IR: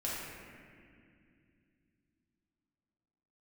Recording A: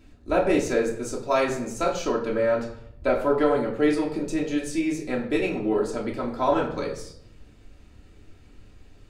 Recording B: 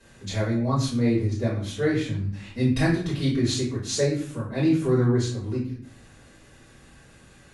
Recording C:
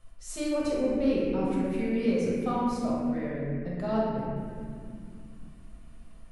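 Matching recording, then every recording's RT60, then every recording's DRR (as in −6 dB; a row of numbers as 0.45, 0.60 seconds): C; 0.70, 0.50, 2.4 seconds; −4.0, −11.5, −7.0 decibels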